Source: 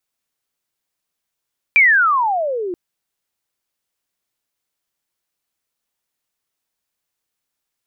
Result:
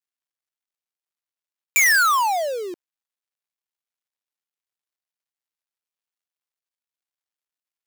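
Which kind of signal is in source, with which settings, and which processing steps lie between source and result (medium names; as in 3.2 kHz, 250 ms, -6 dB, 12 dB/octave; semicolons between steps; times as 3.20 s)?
sweep logarithmic 2.4 kHz -> 340 Hz -7 dBFS -> -21.5 dBFS 0.98 s
dead-time distortion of 0.11 ms; high-pass 700 Hz 6 dB/octave; dynamic bell 4 kHz, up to -4 dB, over -30 dBFS, Q 0.89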